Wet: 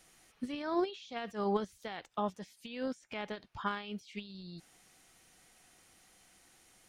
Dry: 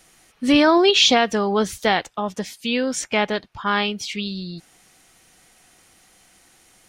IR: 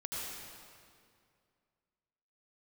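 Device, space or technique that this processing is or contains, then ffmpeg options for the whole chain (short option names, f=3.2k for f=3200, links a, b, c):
de-esser from a sidechain: -filter_complex "[0:a]asplit=2[a][b];[b]highpass=f=5k:w=0.5412,highpass=f=5k:w=1.3066,apad=whole_len=303826[c];[a][c]sidechaincompress=threshold=-50dB:ratio=10:attack=0.99:release=56,volume=-8.5dB"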